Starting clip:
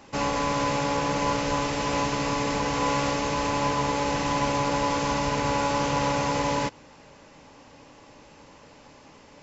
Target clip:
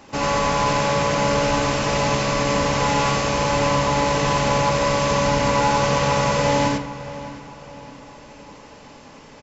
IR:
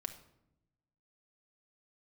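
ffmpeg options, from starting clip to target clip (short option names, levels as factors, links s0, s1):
-filter_complex "[0:a]asplit=2[s0][s1];[s1]adelay=614,lowpass=f=3700:p=1,volume=0.178,asplit=2[s2][s3];[s3]adelay=614,lowpass=f=3700:p=1,volume=0.44,asplit=2[s4][s5];[s5]adelay=614,lowpass=f=3700:p=1,volume=0.44,asplit=2[s6][s7];[s7]adelay=614,lowpass=f=3700:p=1,volume=0.44[s8];[s0][s2][s4][s6][s8]amix=inputs=5:normalize=0,asplit=2[s9][s10];[1:a]atrim=start_sample=2205,adelay=90[s11];[s10][s11]afir=irnorm=-1:irlink=0,volume=1.19[s12];[s9][s12]amix=inputs=2:normalize=0,volume=1.5"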